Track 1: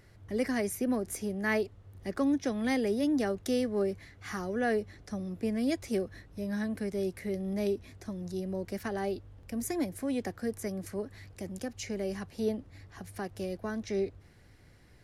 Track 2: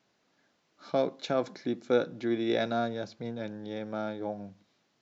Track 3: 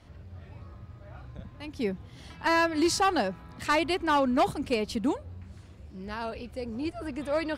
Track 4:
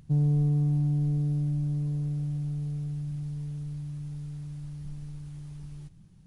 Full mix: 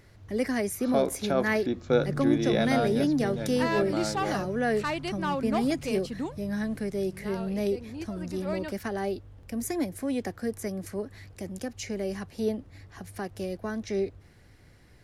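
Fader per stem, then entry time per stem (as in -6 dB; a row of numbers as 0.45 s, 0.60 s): +2.5 dB, +2.0 dB, -6.0 dB, -10.0 dB; 0.00 s, 0.00 s, 1.15 s, 1.80 s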